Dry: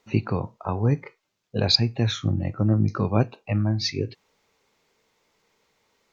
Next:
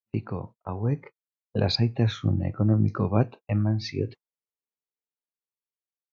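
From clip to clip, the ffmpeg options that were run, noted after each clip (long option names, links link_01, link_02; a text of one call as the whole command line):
ffmpeg -i in.wav -af "agate=range=-37dB:threshold=-36dB:ratio=16:detection=peak,lowpass=frequency=1800:poles=1,dynaudnorm=framelen=280:gausssize=9:maxgain=11.5dB,volume=-6.5dB" out.wav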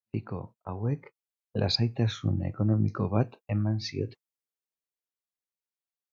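ffmpeg -i in.wav -af "adynamicequalizer=threshold=0.00398:dfrequency=4800:dqfactor=0.7:tfrequency=4800:tqfactor=0.7:attack=5:release=100:ratio=0.375:range=3.5:mode=boostabove:tftype=highshelf,volume=-3.5dB" out.wav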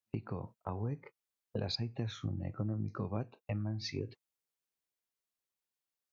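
ffmpeg -i in.wav -af "acompressor=threshold=-37dB:ratio=4,volume=1.5dB" out.wav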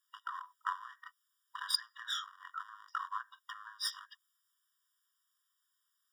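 ffmpeg -i in.wav -af "aeval=exprs='clip(val(0),-1,0.00562)':channel_layout=same,afftfilt=real='re*eq(mod(floor(b*sr/1024/960),2),1)':imag='im*eq(mod(floor(b*sr/1024/960),2),1)':win_size=1024:overlap=0.75,volume=13.5dB" out.wav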